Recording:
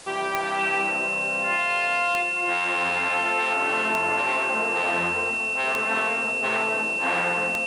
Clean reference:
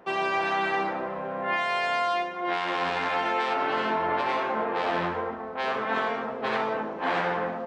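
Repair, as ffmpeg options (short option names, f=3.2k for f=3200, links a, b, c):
-af "adeclick=t=4,bandreject=f=2.7k:w=30,afwtdn=0.0071"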